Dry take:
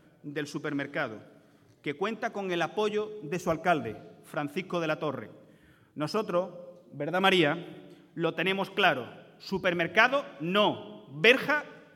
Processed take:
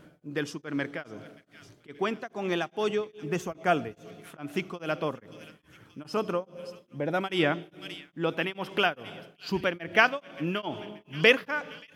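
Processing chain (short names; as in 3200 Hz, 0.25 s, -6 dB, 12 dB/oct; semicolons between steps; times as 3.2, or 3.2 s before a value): high shelf 12000 Hz -3.5 dB; in parallel at +1 dB: compressor, threshold -38 dBFS, peak gain reduction 21.5 dB; on the sum: thin delay 0.579 s, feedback 61%, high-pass 2500 Hz, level -13 dB; beating tremolo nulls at 2.4 Hz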